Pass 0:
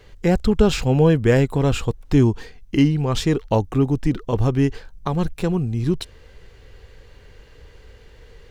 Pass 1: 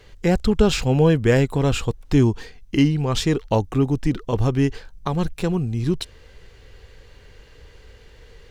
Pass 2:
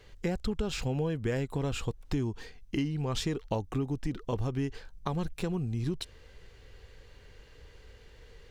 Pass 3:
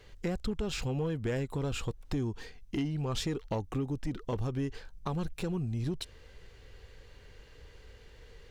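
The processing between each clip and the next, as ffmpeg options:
ffmpeg -i in.wav -af "equalizer=frequency=5300:width_type=o:width=2.9:gain=3,volume=-1dB" out.wav
ffmpeg -i in.wav -af "acompressor=threshold=-21dB:ratio=6,volume=-6.5dB" out.wav
ffmpeg -i in.wav -af "asoftclip=type=tanh:threshold=-24dB" out.wav

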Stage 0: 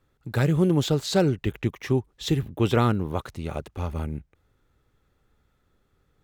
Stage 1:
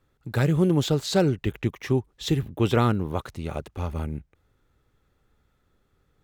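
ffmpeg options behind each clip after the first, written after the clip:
ffmpeg -i in.wav -af anull out.wav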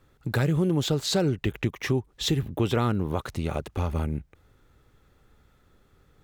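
ffmpeg -i in.wav -filter_complex "[0:a]asplit=2[link_01][link_02];[link_02]alimiter=limit=-18.5dB:level=0:latency=1:release=76,volume=-2dB[link_03];[link_01][link_03]amix=inputs=2:normalize=0,acompressor=threshold=-29dB:ratio=2,volume=2dB" out.wav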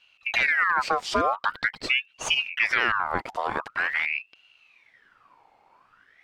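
ffmpeg -i in.wav -af "aemphasis=mode=reproduction:type=50fm,aeval=exprs='val(0)*sin(2*PI*1800*n/s+1800*0.55/0.45*sin(2*PI*0.45*n/s))':channel_layout=same,volume=3dB" out.wav

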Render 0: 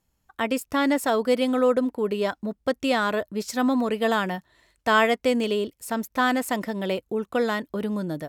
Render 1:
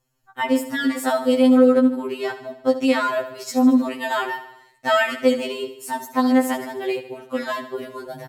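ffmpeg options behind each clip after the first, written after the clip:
ffmpeg -i in.wav -af "bandreject=frequency=3500:width=17,aecho=1:1:75|150|225|300|375|450:0.224|0.125|0.0702|0.0393|0.022|0.0123,afftfilt=real='re*2.45*eq(mod(b,6),0)':imag='im*2.45*eq(mod(b,6),0)':win_size=2048:overlap=0.75,volume=4dB" out.wav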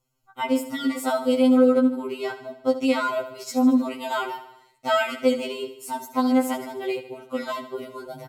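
ffmpeg -i in.wav -af "asuperstop=centerf=1700:order=20:qfactor=6.3,volume=-3dB" out.wav

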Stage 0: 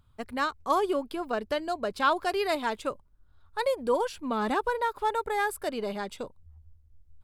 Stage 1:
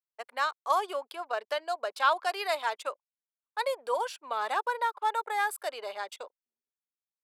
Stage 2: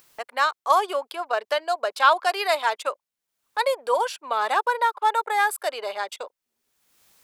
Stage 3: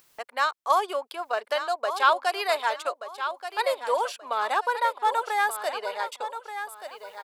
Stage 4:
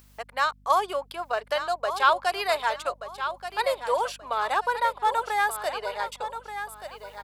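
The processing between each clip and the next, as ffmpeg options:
ffmpeg -i in.wav -af "anlmdn=0.0158,highpass=frequency=570:width=0.5412,highpass=frequency=570:width=1.3066" out.wav
ffmpeg -i in.wav -af "acompressor=mode=upward:threshold=-42dB:ratio=2.5,volume=7.5dB" out.wav
ffmpeg -i in.wav -af "aecho=1:1:1180|2360|3540:0.316|0.0917|0.0266,volume=-3dB" out.wav
ffmpeg -i in.wav -af "aeval=exprs='val(0)+0.00178*(sin(2*PI*50*n/s)+sin(2*PI*2*50*n/s)/2+sin(2*PI*3*50*n/s)/3+sin(2*PI*4*50*n/s)/4+sin(2*PI*5*50*n/s)/5)':channel_layout=same" out.wav

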